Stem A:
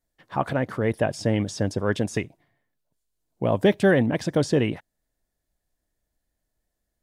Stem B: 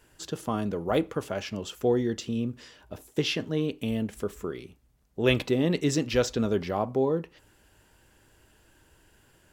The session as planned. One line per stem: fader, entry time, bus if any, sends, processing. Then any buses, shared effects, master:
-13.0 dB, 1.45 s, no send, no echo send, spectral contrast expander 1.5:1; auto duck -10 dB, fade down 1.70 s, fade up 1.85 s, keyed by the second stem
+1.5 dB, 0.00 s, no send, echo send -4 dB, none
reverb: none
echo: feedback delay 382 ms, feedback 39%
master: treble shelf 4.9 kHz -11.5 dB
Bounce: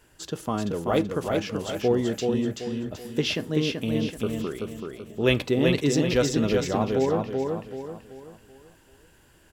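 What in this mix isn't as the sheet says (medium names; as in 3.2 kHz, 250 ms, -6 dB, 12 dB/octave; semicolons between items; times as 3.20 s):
stem A -13.0 dB -> -21.5 dB; master: missing treble shelf 4.9 kHz -11.5 dB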